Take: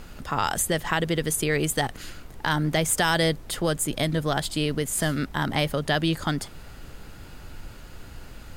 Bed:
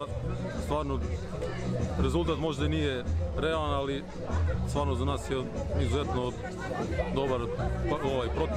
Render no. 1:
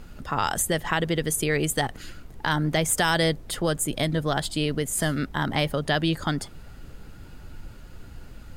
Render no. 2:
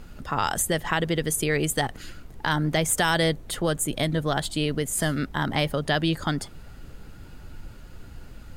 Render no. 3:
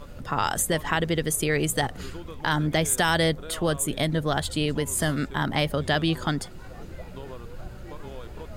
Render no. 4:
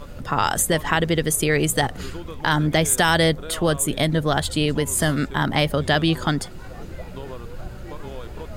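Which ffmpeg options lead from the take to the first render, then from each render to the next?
-af "afftdn=nr=6:nf=-44"
-filter_complex "[0:a]asettb=1/sr,asplit=3[a][b][c];[a]atrim=end=2.924[d];[b]atrim=start=2.92:end=4.75,asetpts=PTS-STARTPTS,afade=t=in:d=0.004:c=qsin,afade=t=out:st=1.826:d=0.004:c=qsin,bandreject=f=5k:w=12[e];[c]atrim=start=4.746[f];[d][e]acrossfade=d=0.004:c1=hsin:c2=qsin[g];[g][f]acrossfade=d=0.004:c1=qsin:c2=hsin"
-filter_complex "[1:a]volume=-12dB[a];[0:a][a]amix=inputs=2:normalize=0"
-af "volume=4.5dB"

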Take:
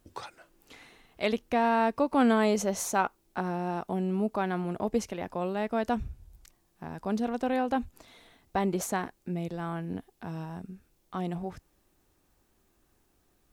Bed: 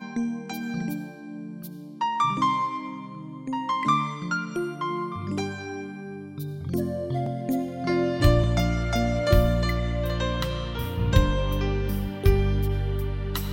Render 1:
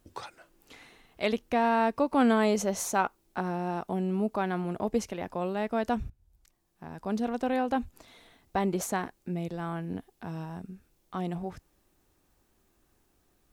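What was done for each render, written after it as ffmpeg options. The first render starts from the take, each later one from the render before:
-filter_complex "[0:a]asplit=2[a][b];[a]atrim=end=6.1,asetpts=PTS-STARTPTS,afade=t=out:st=6.096:d=0.004:c=hsin:silence=0.112202[c];[b]atrim=start=6.1,asetpts=PTS-STARTPTS,afade=t=in:d=1.15:silence=0.112202[d];[c][d]concat=n=2:v=0:a=1"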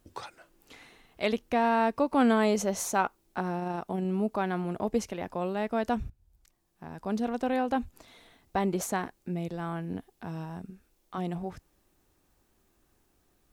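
-filter_complex "[0:a]asettb=1/sr,asplit=3[a][b][c];[a]atrim=end=3.594[d];[b]atrim=start=3.59:end=4.05,asetpts=PTS-STARTPTS,afade=t=in:d=0.004:c=qsin,afade=t=out:st=0.456:d=0.004:c=qsin,tremolo=f=25:d=0.261[e];[c]atrim=start=4.046[f];[d][e]acrossfade=d=0.004:c1=hsin:c2=qsin[g];[g][f]acrossfade=d=0.004:c1=qsin:c2=hsin,asettb=1/sr,asplit=3[h][i][j];[h]atrim=end=10.704[k];[i]atrim=start=10.7:end=11.18,asetpts=PTS-STARTPTS,afade=t=in:d=0.004:c=qsin,afade=t=out:st=0.476:d=0.004:c=qsin,equalizer=f=120:w=1.3:g=-10.5[l];[j]atrim=start=11.176[m];[k][l]acrossfade=d=0.004:c1=hsin:c2=qsin[n];[n][m]acrossfade=d=0.004:c1=qsin:c2=hsin"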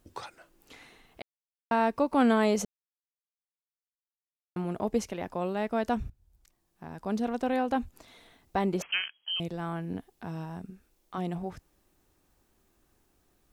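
-filter_complex "[0:a]asettb=1/sr,asplit=3[a][b][c];[a]atrim=end=8.824[d];[b]atrim=start=8.82:end=9.4,asetpts=PTS-STARTPTS,afade=t=in:d=0.004:c=qsin,afade=t=out:st=0.576:d=0.004:c=qsin,lowpass=f=2.8k:t=q:w=0.5098,lowpass=f=2.8k:t=q:w=0.6013,lowpass=f=2.8k:t=q:w=0.9,lowpass=f=2.8k:t=q:w=2.563,afreqshift=-3300[e];[c]atrim=start=9.396[f];[d][e]acrossfade=d=0.004:c1=hsin:c2=qsin[g];[g][f]acrossfade=d=0.004:c1=qsin:c2=hsin,asplit=5[h][i][j][k][l];[h]atrim=end=1.22,asetpts=PTS-STARTPTS,afade=t=out:st=1.216:d=0.004:c=hsin[m];[i]atrim=start=1.22:end=1.71,asetpts=PTS-STARTPTS,volume=0[n];[j]atrim=start=1.71:end=2.65,asetpts=PTS-STARTPTS,afade=t=in:d=0.004:c=hsin,afade=t=out:st=0.936:d=0.004:c=hsin[o];[k]atrim=start=2.65:end=4.56,asetpts=PTS-STARTPTS,volume=0[p];[l]atrim=start=4.56,asetpts=PTS-STARTPTS,afade=t=in:d=0.004:c=hsin[q];[m][n][o][p][q]concat=n=5:v=0:a=1"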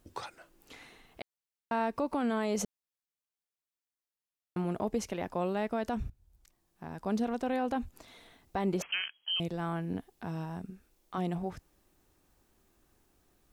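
-af "alimiter=limit=-21.5dB:level=0:latency=1:release=77"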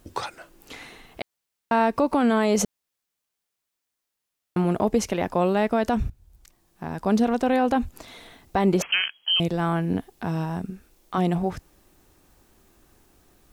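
-af "volume=10.5dB"

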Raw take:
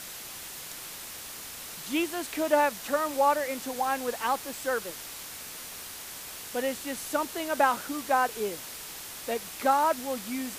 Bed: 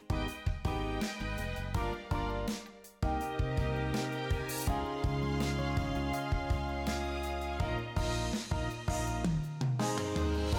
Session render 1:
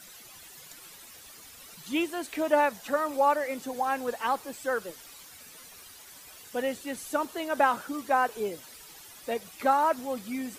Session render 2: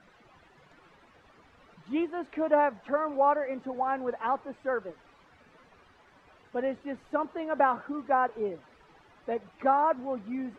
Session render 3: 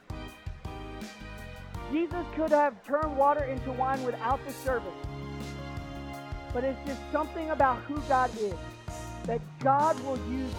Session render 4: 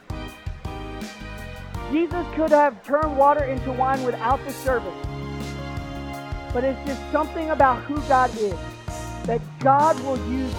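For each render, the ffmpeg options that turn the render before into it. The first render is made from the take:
-af "afftdn=nr=12:nf=-42"
-af "lowpass=1.5k"
-filter_complex "[1:a]volume=-6dB[a];[0:a][a]amix=inputs=2:normalize=0"
-af "volume=7.5dB"

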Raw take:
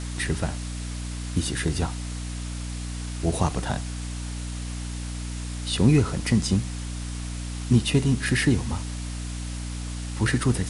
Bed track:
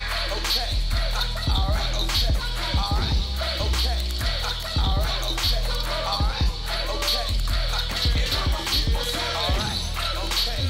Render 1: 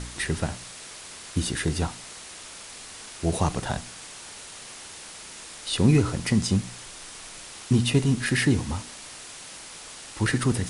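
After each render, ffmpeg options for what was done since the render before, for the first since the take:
-af "bandreject=f=60:t=h:w=4,bandreject=f=120:t=h:w=4,bandreject=f=180:t=h:w=4,bandreject=f=240:t=h:w=4,bandreject=f=300:t=h:w=4"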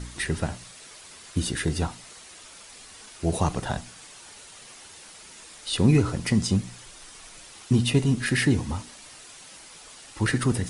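-af "afftdn=nr=7:nf=-43"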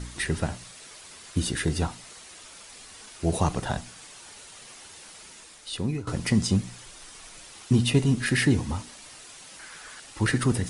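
-filter_complex "[0:a]asettb=1/sr,asplit=3[a][b][c];[a]atrim=end=9.594[d];[b]atrim=start=9.59:end=10,asetpts=PTS-STARTPTS,afade=t=in:d=0.004:c=qsin,afade=t=out:st=0.406:d=0.004:c=qsin,equalizer=f=1.6k:t=o:w=0.64:g=13.5[e];[c]atrim=start=9.996[f];[d][e]acrossfade=d=0.004:c1=hsin:c2=qsin[g];[g][f]acrossfade=d=0.004:c1=qsin:c2=hsin,asplit=2[h][i];[h]atrim=end=6.07,asetpts=PTS-STARTPTS,afade=t=out:st=5.24:d=0.83:silence=0.125893[j];[i]atrim=start=6.07,asetpts=PTS-STARTPTS,afade=t=in:d=0.004:c=hsin:silence=0.125893[k];[j][k]concat=n=2:v=0:a=1"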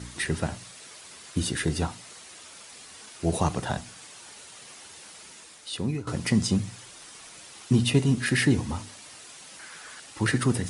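-af "highpass=74,bandreject=f=50:t=h:w=6,bandreject=f=100:t=h:w=6"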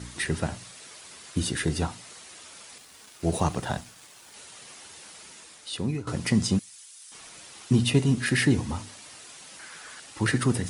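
-filter_complex "[0:a]asettb=1/sr,asplit=3[a][b][c];[a]atrim=end=2.784[d];[b]atrim=start=2.78:end=4.34,asetpts=PTS-STARTPTS,afade=t=in:d=0.004:c=qsin,afade=t=out:st=1.556:d=0.004:c=qsin,aeval=exprs='sgn(val(0))*max(abs(val(0))-0.00266,0)':c=same[e];[c]atrim=start=4.336[f];[d][e]acrossfade=d=0.004:c1=hsin:c2=qsin[g];[g][f]acrossfade=d=0.004:c1=qsin:c2=hsin,asettb=1/sr,asplit=3[h][i][j];[h]atrim=end=6.594[k];[i]atrim=start=6.59:end=7.12,asetpts=PTS-STARTPTS,afade=t=in:d=0.004:c=qsin,afade=t=out:st=0.526:d=0.004:c=qsin,aderivative[l];[j]atrim=start=7.116[m];[k][l]acrossfade=d=0.004:c1=hsin:c2=qsin[n];[n][m]acrossfade=d=0.004:c1=qsin:c2=hsin"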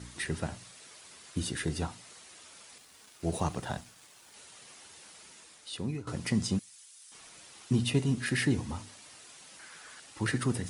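-af "volume=-6dB"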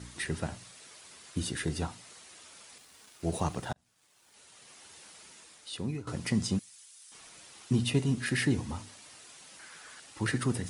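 -filter_complex "[0:a]asplit=2[a][b];[a]atrim=end=3.73,asetpts=PTS-STARTPTS,afade=t=out:st=3.726:d=0.004:c=hsin[c];[b]atrim=start=3.73,asetpts=PTS-STARTPTS,afade=t=in:d=1.22[d];[c][d]concat=n=2:v=0:a=1"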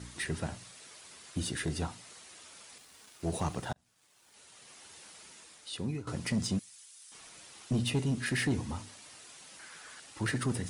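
-af "asoftclip=type=tanh:threshold=-23dB"

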